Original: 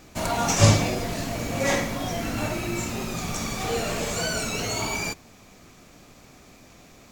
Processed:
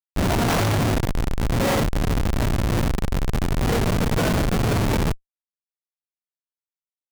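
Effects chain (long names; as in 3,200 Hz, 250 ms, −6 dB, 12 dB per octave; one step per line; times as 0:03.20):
variable-slope delta modulation 64 kbit/s
comparator with hysteresis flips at −22.5 dBFS
level +7.5 dB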